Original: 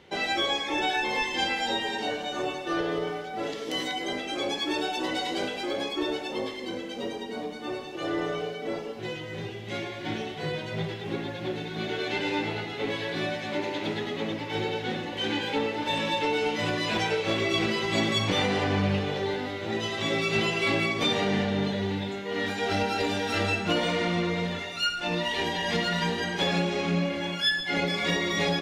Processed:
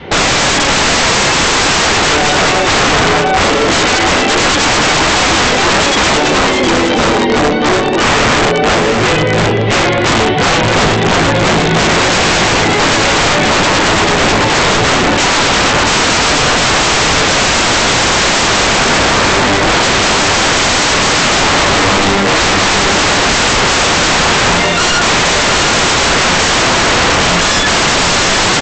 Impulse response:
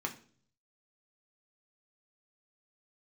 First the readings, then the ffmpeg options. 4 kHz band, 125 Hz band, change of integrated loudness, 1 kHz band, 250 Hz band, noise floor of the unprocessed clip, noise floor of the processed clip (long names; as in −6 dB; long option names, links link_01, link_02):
+19.0 dB, +16.0 dB, +19.0 dB, +20.5 dB, +15.0 dB, −37 dBFS, −12 dBFS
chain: -filter_complex "[0:a]lowpass=4300,adynamicequalizer=threshold=0.00631:dfrequency=400:dqfactor=2.1:tfrequency=400:tqfactor=2.1:attack=5:release=100:ratio=0.375:range=1.5:mode=cutabove:tftype=bell,aresample=16000,aeval=exprs='(mod(28.2*val(0)+1,2)-1)/28.2':channel_layout=same,aresample=44100,highshelf=frequency=2800:gain=-10.5,asplit=2[link_01][link_02];[link_02]aecho=0:1:714:0.473[link_03];[link_01][link_03]amix=inputs=2:normalize=0,apsyclip=34.5dB,volume=-6dB"